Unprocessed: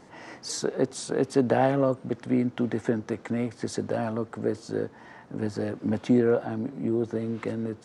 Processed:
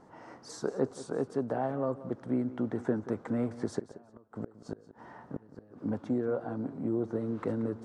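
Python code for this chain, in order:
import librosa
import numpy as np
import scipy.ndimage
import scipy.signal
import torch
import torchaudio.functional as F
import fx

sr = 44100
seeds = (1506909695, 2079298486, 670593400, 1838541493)

y = fx.high_shelf_res(x, sr, hz=1700.0, db=-8.0, q=1.5)
y = fx.rider(y, sr, range_db=10, speed_s=0.5)
y = fx.gate_flip(y, sr, shuts_db=-17.0, range_db=-27, at=(3.79, 5.82))
y = fx.echo_feedback(y, sr, ms=180, feedback_pct=22, wet_db=-16.0)
y = F.gain(torch.from_numpy(y), -6.0).numpy()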